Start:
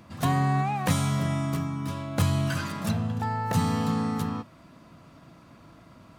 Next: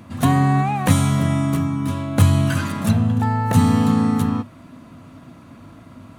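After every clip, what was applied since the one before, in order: graphic EQ with 31 bands 100 Hz +8 dB, 250 Hz +9 dB, 5 kHz -6 dB, 10 kHz +4 dB; trim +6 dB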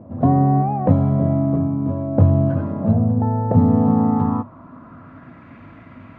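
low-pass sweep 590 Hz -> 2.1 kHz, 3.67–5.54 s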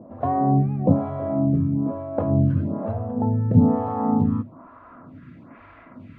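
lamp-driven phase shifter 1.1 Hz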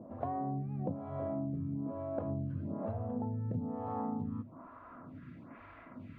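compression 16:1, threshold -27 dBFS, peak gain reduction 18.5 dB; trim -6 dB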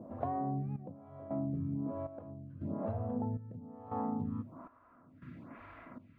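trance gate "xxxxxxx....." 138 bpm -12 dB; trim +1 dB

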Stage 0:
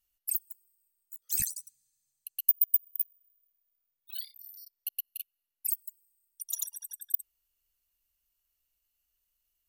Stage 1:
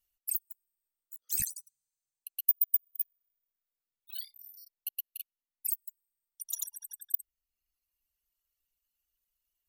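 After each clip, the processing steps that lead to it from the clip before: reverb removal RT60 1.5 s; trim -1.5 dB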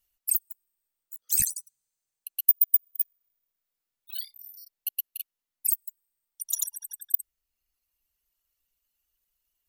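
dynamic bell 8.7 kHz, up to +4 dB, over -42 dBFS, Q 0.78; trim +5 dB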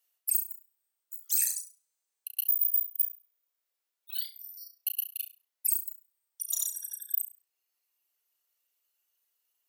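high-pass 360 Hz 24 dB/octave; flutter echo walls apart 5.8 m, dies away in 0.3 s; peak limiter -15.5 dBFS, peak gain reduction 10.5 dB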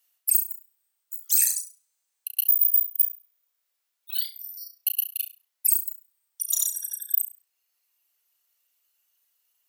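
bass shelf 460 Hz -10 dB; trim +6.5 dB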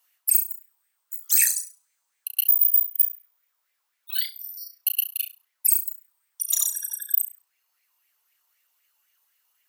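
sweeping bell 3.9 Hz 900–2200 Hz +13 dB; trim +1.5 dB

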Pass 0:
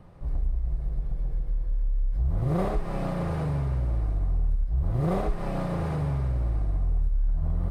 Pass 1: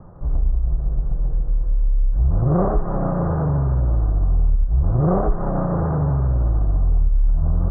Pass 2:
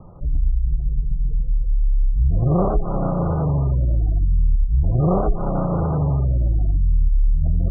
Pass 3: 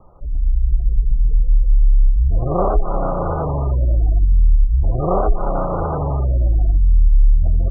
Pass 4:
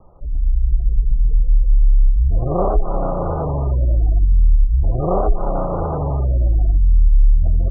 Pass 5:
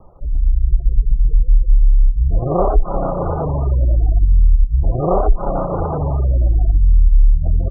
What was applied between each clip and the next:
steep low-pass 1.5 kHz 48 dB/octave; vibrato 13 Hz 47 cents; trim +8 dB
spectral gate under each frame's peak -30 dB strong
level rider gain up to 10.5 dB; peaking EQ 150 Hz -13 dB 2.2 oct
low-pass 1.1 kHz 12 dB/octave
reverb removal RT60 0.74 s; trim +3.5 dB

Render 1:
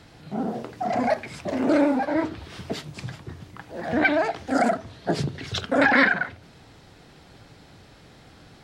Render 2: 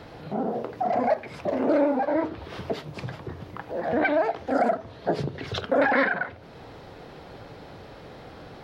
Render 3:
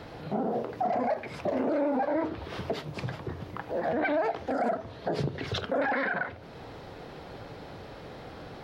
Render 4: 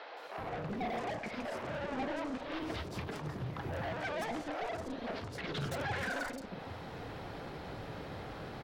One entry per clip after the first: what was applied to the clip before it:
ten-band graphic EQ 500 Hz +8 dB, 1 kHz +4 dB, 8 kHz -11 dB; compression 1.5:1, threshold -41 dBFS, peak gain reduction 11 dB; trim +3.5 dB
peak limiter -20.5 dBFS, peak gain reduction 10 dB
saturation -36.5 dBFS, distortion -5 dB; three bands offset in time mids, highs, lows 170/380 ms, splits 490/4800 Hz; trim +2 dB

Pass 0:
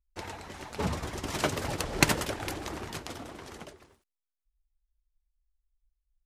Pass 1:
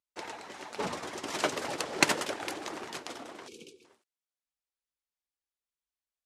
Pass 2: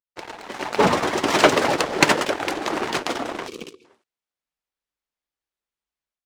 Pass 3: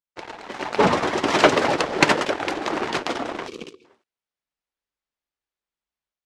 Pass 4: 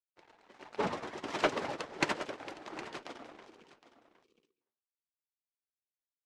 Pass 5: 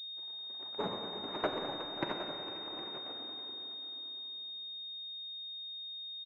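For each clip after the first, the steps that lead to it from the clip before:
high-pass 290 Hz 12 dB/octave; time-frequency box 3.48–3.85 s, 520–2200 Hz -28 dB; low-pass 10 kHz 12 dB/octave
treble shelf 5.3 kHz -11 dB; level rider gain up to 10.5 dB; waveshaping leveller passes 2
distance through air 52 m
flange 1.4 Hz, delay 0.3 ms, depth 9.2 ms, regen +88%; delay 763 ms -11 dB; upward expansion 1.5:1, over -39 dBFS; trim -8.5 dB
delay 536 ms -18 dB; Schroeder reverb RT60 3.2 s, combs from 31 ms, DRR 4.5 dB; class-D stage that switches slowly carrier 3.7 kHz; trim -4 dB

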